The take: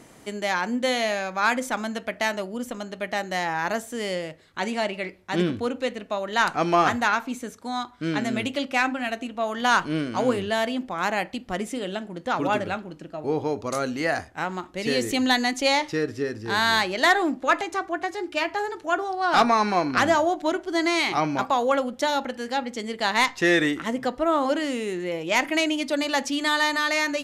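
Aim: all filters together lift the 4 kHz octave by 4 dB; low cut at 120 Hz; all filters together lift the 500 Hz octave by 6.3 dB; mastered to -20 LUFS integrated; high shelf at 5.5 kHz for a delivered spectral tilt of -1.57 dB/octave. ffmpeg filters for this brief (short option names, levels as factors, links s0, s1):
-af "highpass=120,equalizer=f=500:t=o:g=8,equalizer=f=4000:t=o:g=6.5,highshelf=f=5500:g=-5,volume=1.19"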